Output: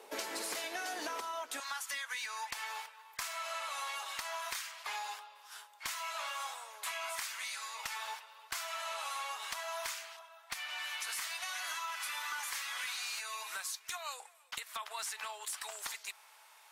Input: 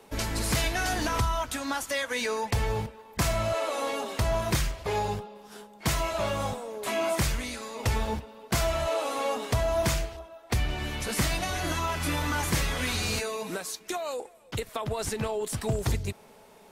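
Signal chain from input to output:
high-pass filter 360 Hz 24 dB per octave, from 0:01.60 1,000 Hz
downward compressor 10 to 1, threshold −36 dBFS, peak gain reduction 11.5 dB
asymmetric clip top −32 dBFS

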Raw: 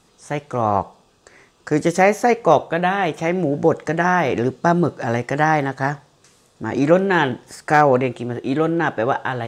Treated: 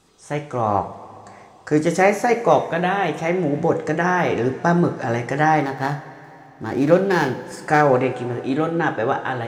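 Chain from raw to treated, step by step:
0:05.65–0:07.45: running median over 15 samples
coupled-rooms reverb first 0.36 s, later 3.3 s, from −17 dB, DRR 5.5 dB
level −2 dB

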